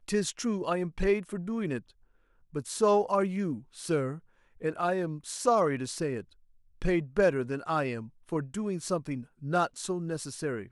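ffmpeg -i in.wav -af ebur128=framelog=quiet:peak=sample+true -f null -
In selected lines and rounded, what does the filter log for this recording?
Integrated loudness:
  I:         -30.7 LUFS
  Threshold: -40.9 LUFS
Loudness range:
  LRA:         1.8 LU
  Threshold: -50.7 LUFS
  LRA low:   -31.5 LUFS
  LRA high:  -29.7 LUFS
Sample peak:
  Peak:      -12.2 dBFS
True peak:
  Peak:      -12.2 dBFS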